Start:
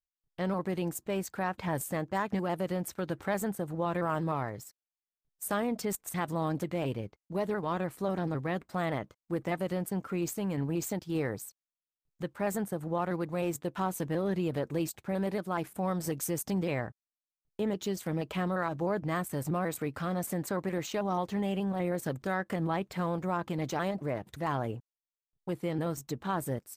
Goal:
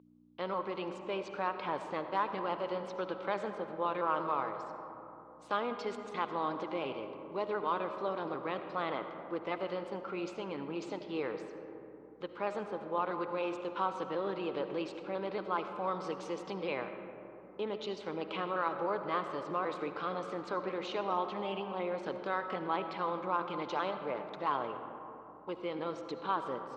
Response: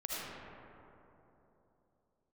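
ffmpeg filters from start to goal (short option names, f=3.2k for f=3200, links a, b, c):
-filter_complex "[0:a]aeval=exprs='val(0)+0.00708*(sin(2*PI*60*n/s)+sin(2*PI*2*60*n/s)/2+sin(2*PI*3*60*n/s)/3+sin(2*PI*4*60*n/s)/4+sin(2*PI*5*60*n/s)/5)':c=same,highpass=480,equalizer=f=680:t=q:w=4:g=-8,equalizer=f=1.1k:t=q:w=4:g=3,equalizer=f=1.8k:t=q:w=4:g=-10,lowpass=f=4.2k:w=0.5412,lowpass=f=4.2k:w=1.3066,asplit=2[a][b];[1:a]atrim=start_sample=2205,lowpass=6.4k[c];[b][c]afir=irnorm=-1:irlink=0,volume=-8dB[d];[a][d]amix=inputs=2:normalize=0"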